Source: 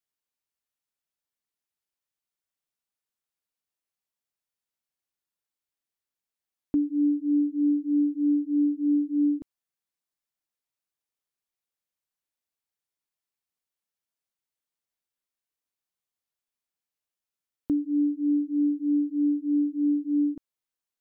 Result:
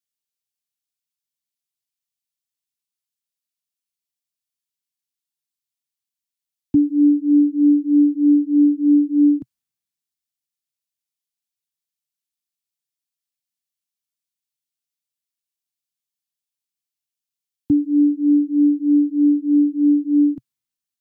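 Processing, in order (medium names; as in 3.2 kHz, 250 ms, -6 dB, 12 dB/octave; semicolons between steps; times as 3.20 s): graphic EQ 125/250/500 Hz +11/+7/-6 dB; three bands expanded up and down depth 40%; trim +3.5 dB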